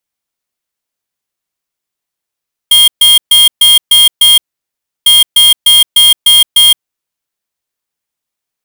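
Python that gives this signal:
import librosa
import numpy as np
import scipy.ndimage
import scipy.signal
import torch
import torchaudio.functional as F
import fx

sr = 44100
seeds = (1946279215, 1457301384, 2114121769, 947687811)

y = fx.beep_pattern(sr, wave='square', hz=3230.0, on_s=0.17, off_s=0.13, beeps=6, pause_s=0.68, groups=2, level_db=-4.5)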